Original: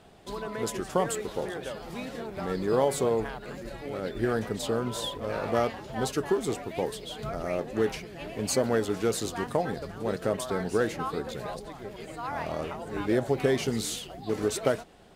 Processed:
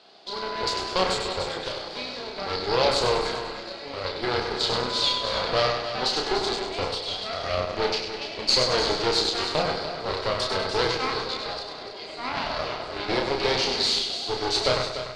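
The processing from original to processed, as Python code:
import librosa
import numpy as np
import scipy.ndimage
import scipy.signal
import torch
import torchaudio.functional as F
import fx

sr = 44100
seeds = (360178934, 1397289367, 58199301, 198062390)

y = scipy.signal.sosfilt(scipy.signal.butter(2, 410.0, 'highpass', fs=sr, output='sos'), x)
y = fx.echo_feedback(y, sr, ms=99, feedback_pct=46, wet_db=-6)
y = fx.cheby_harmonics(y, sr, harmonics=(8,), levels_db=(-15,), full_scale_db=-12.5)
y = fx.lowpass_res(y, sr, hz=4500.0, q=6.1)
y = fx.notch(y, sr, hz=1800.0, q=16.0)
y = fx.doubler(y, sr, ms=32.0, db=-3.5)
y = y + 10.0 ** (-10.0 / 20.0) * np.pad(y, (int(294 * sr / 1000.0), 0))[:len(y)]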